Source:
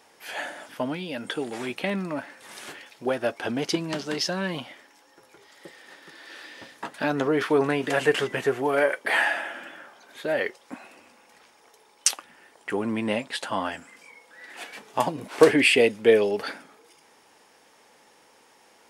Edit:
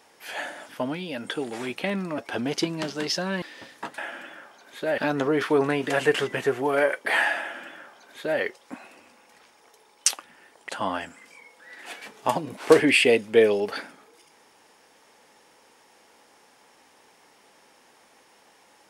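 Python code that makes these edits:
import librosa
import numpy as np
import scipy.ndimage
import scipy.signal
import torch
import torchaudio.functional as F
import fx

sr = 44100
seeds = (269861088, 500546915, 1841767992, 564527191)

y = fx.edit(x, sr, fx.cut(start_s=2.18, length_s=1.11),
    fx.cut(start_s=4.53, length_s=1.89),
    fx.duplicate(start_s=9.4, length_s=1.0, to_s=6.98),
    fx.cut(start_s=12.69, length_s=0.71), tone=tone)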